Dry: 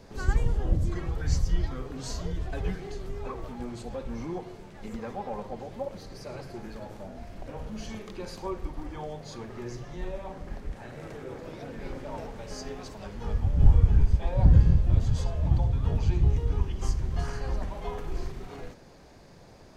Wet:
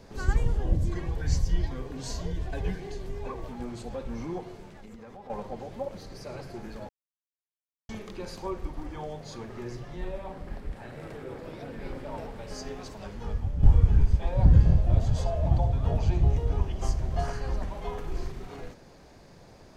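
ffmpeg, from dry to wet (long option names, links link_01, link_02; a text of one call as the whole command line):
ffmpeg -i in.wav -filter_complex "[0:a]asettb=1/sr,asplit=3[link_01][link_02][link_03];[link_01]atrim=end=0.614[link_04];[link_02]atrim=start=0.61:end=3.52,asetpts=PTS-STARTPTS,afade=type=in:duration=0.004:curve=qsin,afade=type=out:start_time=2.906:duration=0.004:curve=qsin,asuperstop=centerf=1300:order=4:qfactor=7.3[link_05];[link_03]atrim=start=3.516[link_06];[link_04][link_05]acrossfade=duration=0.004:curve1=hsin:curve2=qsin[link_07];[link_07][link_06]acrossfade=duration=0.004:curve1=qsin:curve2=hsin,asettb=1/sr,asplit=3[link_08][link_09][link_10];[link_08]atrim=end=4.694[link_11];[link_09]atrim=start=4.69:end=5.3,asetpts=PTS-STARTPTS,afade=type=in:duration=0.004:curve=qsin,afade=type=out:start_time=0.606:duration=0.004:curve=qsin,acompressor=threshold=-43dB:ratio=5:attack=3.2:release=140:knee=1:detection=peak[link_12];[link_10]atrim=start=5.296[link_13];[link_11][link_12]acrossfade=duration=0.004:curve1=hsin:curve2=qsin[link_14];[link_14][link_13]acrossfade=duration=0.004:curve1=qsin:curve2=hsin,asettb=1/sr,asplit=3[link_15][link_16][link_17];[link_15]atrim=end=9.674[link_18];[link_16]atrim=start=9.67:end=12.55,asetpts=PTS-STARTPTS,afade=type=in:duration=0.004:curve=qsin,afade=type=out:start_time=2.876:duration=0.004:curve=qsin,equalizer=frequency=6300:width_type=o:width=0.36:gain=-6[link_19];[link_17]atrim=start=12.546[link_20];[link_18][link_19]acrossfade=duration=0.004:curve1=hsin:curve2=qsin[link_21];[link_21][link_20]acrossfade=duration=0.004:curve1=qsin:curve2=hsin,asettb=1/sr,asplit=3[link_22][link_23][link_24];[link_22]atrim=end=14.644[link_25];[link_23]atrim=start=14.64:end=17.33,asetpts=PTS-STARTPTS,afade=type=in:duration=0.004:curve=qsin,afade=type=out:start_time=2.686:duration=0.004:curve=qsin,equalizer=frequency=660:width_type=o:width=0.52:gain=11[link_26];[link_24]atrim=start=17.326[link_27];[link_25][link_26]acrossfade=duration=0.004:curve1=hsin:curve2=qsin[link_28];[link_28][link_27]acrossfade=duration=0.004:curve1=qsin:curve2=hsin,asplit=4[link_29][link_30][link_31][link_32];[link_29]atrim=end=6.89,asetpts=PTS-STARTPTS,afade=type=out:start_time=6.886:duration=0.004:curve=hsin[link_33];[link_30]atrim=start=6.89:end=7.89,asetpts=PTS-STARTPTS,volume=0[link_34];[link_31]atrim=start=7.89:end=13.63,asetpts=PTS-STARTPTS,afade=type=in:duration=0.004:curve=hsin,afade=type=out:start_time=5.21:duration=0.53:silence=0.446684[link_35];[link_32]atrim=start=13.63,asetpts=PTS-STARTPTS,afade=type=in:duration=0.004:curve=hsin:silence=0.446684[link_36];[link_33][link_34][link_35][link_36]concat=n=4:v=0:a=1" out.wav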